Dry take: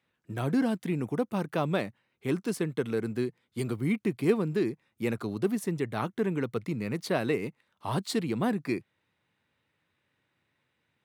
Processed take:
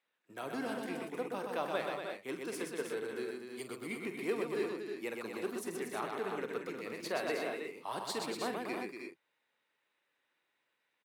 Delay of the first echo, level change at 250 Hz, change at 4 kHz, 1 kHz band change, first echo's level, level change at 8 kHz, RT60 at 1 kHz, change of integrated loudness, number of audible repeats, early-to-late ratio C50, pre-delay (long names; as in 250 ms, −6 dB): 46 ms, −12.5 dB, −3.0 dB, −3.0 dB, −10.5 dB, −3.0 dB, no reverb audible, −8.0 dB, 4, no reverb audible, no reverb audible